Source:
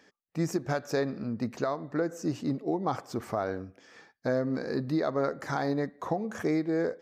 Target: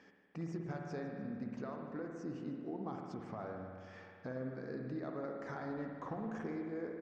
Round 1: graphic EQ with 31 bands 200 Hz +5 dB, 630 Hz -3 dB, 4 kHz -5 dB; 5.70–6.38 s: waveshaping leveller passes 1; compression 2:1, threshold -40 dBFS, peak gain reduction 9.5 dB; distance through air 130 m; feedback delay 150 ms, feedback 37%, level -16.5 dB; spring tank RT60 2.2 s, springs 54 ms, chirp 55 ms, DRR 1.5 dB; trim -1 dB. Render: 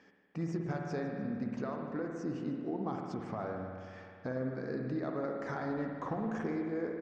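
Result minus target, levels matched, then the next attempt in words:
compression: peak gain reduction -6 dB
graphic EQ with 31 bands 200 Hz +5 dB, 630 Hz -3 dB, 4 kHz -5 dB; 5.70–6.38 s: waveshaping leveller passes 1; compression 2:1, threshold -51.5 dBFS, peak gain reduction 15.5 dB; distance through air 130 m; feedback delay 150 ms, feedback 37%, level -16.5 dB; spring tank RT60 2.2 s, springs 54 ms, chirp 55 ms, DRR 1.5 dB; trim -1 dB

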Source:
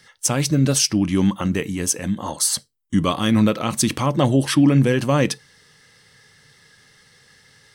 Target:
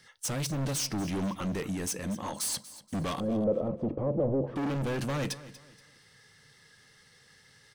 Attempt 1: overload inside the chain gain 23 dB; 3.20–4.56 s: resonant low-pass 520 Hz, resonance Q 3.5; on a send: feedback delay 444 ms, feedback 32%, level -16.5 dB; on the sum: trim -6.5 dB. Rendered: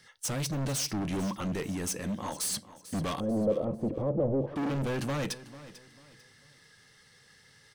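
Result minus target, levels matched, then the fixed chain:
echo 206 ms late
overload inside the chain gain 23 dB; 3.20–4.56 s: resonant low-pass 520 Hz, resonance Q 3.5; on a send: feedback delay 238 ms, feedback 32%, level -16.5 dB; on the sum: trim -6.5 dB

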